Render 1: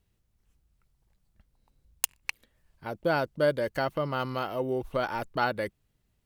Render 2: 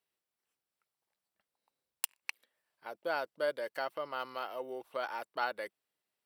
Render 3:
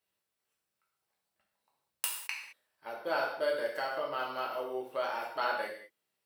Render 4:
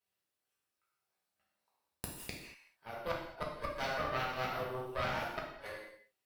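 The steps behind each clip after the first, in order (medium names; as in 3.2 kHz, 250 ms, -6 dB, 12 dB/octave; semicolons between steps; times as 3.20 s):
high-pass 530 Hz 12 dB/octave; band-stop 6.6 kHz, Q 7.4; trim -6 dB
gated-style reverb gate 240 ms falling, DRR -3 dB; trim -1 dB
inverted gate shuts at -22 dBFS, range -33 dB; Chebyshev shaper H 6 -9 dB, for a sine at -14 dBFS; gated-style reverb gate 260 ms falling, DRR -1.5 dB; trim -6.5 dB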